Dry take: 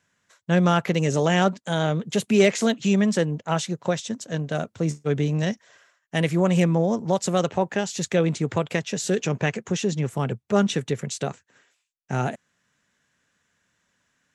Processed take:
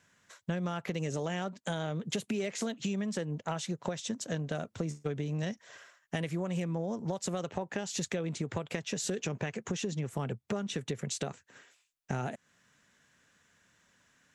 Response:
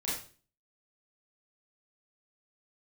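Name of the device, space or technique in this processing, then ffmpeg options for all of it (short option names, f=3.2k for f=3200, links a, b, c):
serial compression, leveller first: -af "acompressor=threshold=-24dB:ratio=2.5,acompressor=threshold=-36dB:ratio=4,volume=3dB"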